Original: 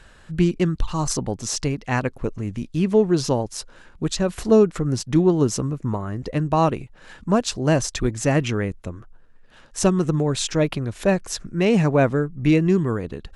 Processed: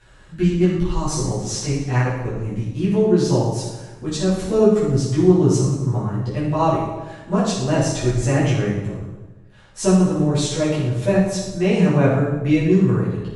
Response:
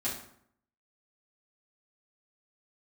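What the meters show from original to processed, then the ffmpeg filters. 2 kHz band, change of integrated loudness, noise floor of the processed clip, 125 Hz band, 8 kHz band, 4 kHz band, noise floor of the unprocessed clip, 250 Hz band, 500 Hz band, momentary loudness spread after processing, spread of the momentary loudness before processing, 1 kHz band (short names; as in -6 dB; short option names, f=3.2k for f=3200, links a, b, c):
0.0 dB, +2.5 dB, -45 dBFS, +4.5 dB, 0.0 dB, 0.0 dB, -49 dBFS, +2.5 dB, +1.5 dB, 10 LU, 11 LU, +1.0 dB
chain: -filter_complex "[1:a]atrim=start_sample=2205,asetrate=22491,aresample=44100[a];[0:a][a]afir=irnorm=-1:irlink=0,volume=-9dB"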